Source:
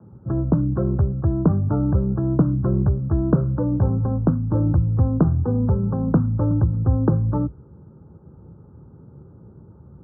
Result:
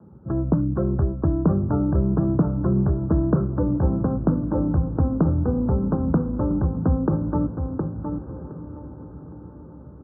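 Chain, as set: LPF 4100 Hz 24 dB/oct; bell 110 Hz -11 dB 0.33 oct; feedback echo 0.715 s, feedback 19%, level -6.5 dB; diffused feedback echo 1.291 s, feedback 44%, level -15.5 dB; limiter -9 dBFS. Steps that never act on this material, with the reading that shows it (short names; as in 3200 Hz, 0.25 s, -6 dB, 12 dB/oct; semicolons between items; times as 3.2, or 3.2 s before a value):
LPF 4100 Hz: input band ends at 600 Hz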